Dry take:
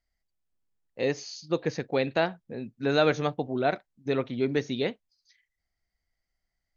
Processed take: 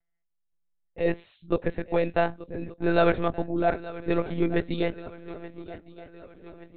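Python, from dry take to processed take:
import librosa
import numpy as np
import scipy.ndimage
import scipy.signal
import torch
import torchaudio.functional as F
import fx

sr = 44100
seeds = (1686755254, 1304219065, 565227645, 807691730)

y = fx.lowpass(x, sr, hz=2000.0, slope=6)
y = fx.echo_swing(y, sr, ms=1172, ratio=3, feedback_pct=47, wet_db=-17)
y = fx.lpc_monotone(y, sr, seeds[0], pitch_hz=170.0, order=16)
y = F.gain(torch.from_numpy(y), 2.5).numpy()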